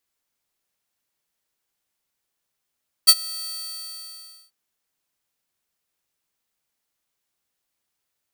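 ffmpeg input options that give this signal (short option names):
-f lavfi -i "aevalsrc='0.668*(2*mod(4540*t,1)-1)':d=1.44:s=44100,afade=t=in:d=0.02,afade=t=out:st=0.02:d=0.049:silence=0.0668,afade=t=out:st=0.38:d=1.06"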